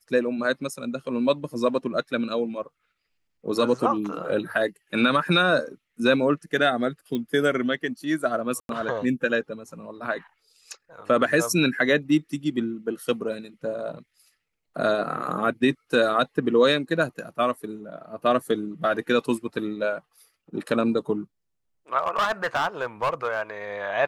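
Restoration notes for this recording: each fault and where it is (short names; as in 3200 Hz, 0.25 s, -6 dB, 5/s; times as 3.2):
7.15 pop -17 dBFS
8.6–8.69 gap 92 ms
21.98–23.42 clipped -19 dBFS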